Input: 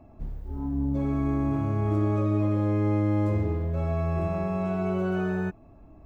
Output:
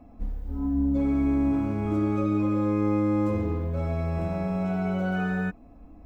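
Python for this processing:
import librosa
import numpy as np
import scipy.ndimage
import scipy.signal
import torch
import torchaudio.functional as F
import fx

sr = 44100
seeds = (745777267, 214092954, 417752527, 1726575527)

y = x + 0.75 * np.pad(x, (int(4.0 * sr / 1000.0), 0))[:len(x)]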